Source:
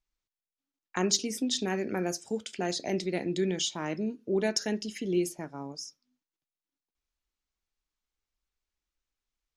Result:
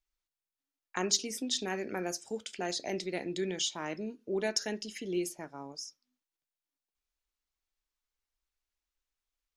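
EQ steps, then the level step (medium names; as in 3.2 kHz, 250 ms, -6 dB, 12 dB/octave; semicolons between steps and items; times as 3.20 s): peaking EQ 150 Hz -7 dB 2.5 oct; -1.5 dB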